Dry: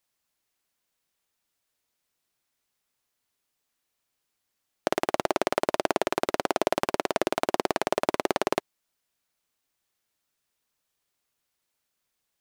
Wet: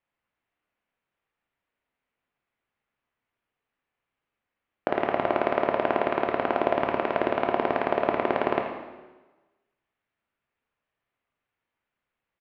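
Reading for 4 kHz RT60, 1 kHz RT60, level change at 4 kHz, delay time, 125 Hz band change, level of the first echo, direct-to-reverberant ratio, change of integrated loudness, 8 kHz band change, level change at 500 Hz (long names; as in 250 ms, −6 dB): 1.1 s, 1.2 s, −7.0 dB, 82 ms, +2.5 dB, −11.5 dB, 2.0 dB, +1.5 dB, below −30 dB, +2.0 dB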